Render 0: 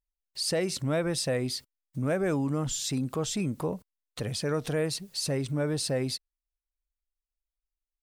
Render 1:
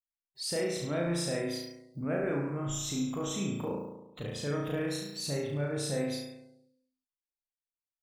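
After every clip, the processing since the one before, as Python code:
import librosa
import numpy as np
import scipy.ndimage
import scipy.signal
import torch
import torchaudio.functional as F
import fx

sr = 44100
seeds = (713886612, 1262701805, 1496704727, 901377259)

y = fx.room_flutter(x, sr, wall_m=6.0, rt60_s=1.0)
y = fx.noise_reduce_blind(y, sr, reduce_db=20)
y = F.gain(torch.from_numpy(y), -7.0).numpy()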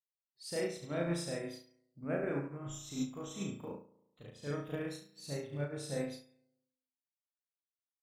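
y = fx.upward_expand(x, sr, threshold_db=-42.0, expansion=2.5)
y = F.gain(torch.from_numpy(y), -1.5).numpy()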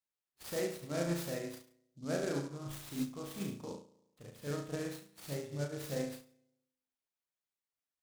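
y = fx.noise_mod_delay(x, sr, seeds[0], noise_hz=5200.0, depth_ms=0.05)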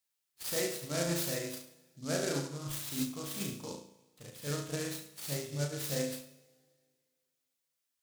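y = fx.high_shelf(x, sr, hz=2100.0, db=10.0)
y = fx.rev_double_slope(y, sr, seeds[1], early_s=0.59, late_s=2.2, knee_db=-18, drr_db=9.5)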